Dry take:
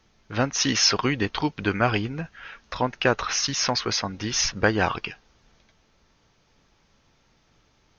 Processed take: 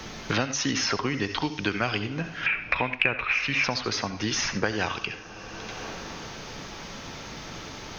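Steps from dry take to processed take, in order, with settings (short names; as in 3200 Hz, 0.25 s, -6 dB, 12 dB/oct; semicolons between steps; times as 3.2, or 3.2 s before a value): 2.46–3.64 synth low-pass 2400 Hz, resonance Q 14; reverb, pre-delay 63 ms, DRR 10.5 dB; three-band squash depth 100%; gain -5 dB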